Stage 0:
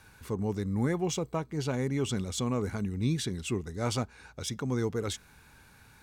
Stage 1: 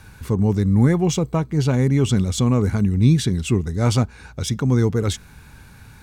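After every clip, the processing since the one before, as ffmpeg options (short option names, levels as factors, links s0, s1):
-af "bass=f=250:g=8,treble=f=4000:g=0,volume=2.51"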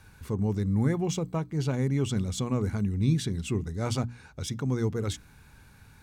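-af "bandreject=f=60:t=h:w=6,bandreject=f=120:t=h:w=6,bandreject=f=180:t=h:w=6,bandreject=f=240:t=h:w=6,bandreject=f=300:t=h:w=6,volume=0.355"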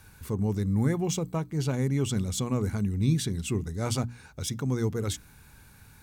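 -af "highshelf=f=8900:g=11.5"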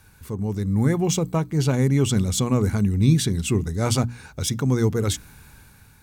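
-af "dynaudnorm=f=220:g=7:m=2.37"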